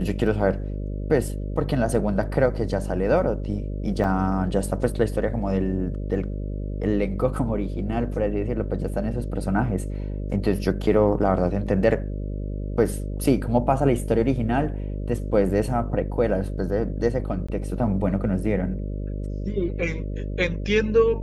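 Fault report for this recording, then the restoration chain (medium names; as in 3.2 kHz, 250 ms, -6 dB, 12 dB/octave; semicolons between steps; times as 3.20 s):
buzz 50 Hz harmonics 12 -29 dBFS
4.04 s: dropout 2.3 ms
17.47–17.48 s: dropout 15 ms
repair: de-hum 50 Hz, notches 12; interpolate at 4.04 s, 2.3 ms; interpolate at 17.47 s, 15 ms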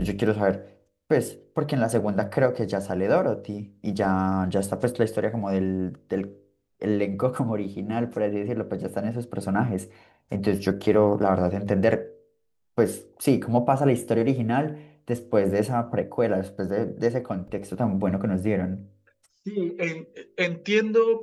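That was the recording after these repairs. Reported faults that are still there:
nothing left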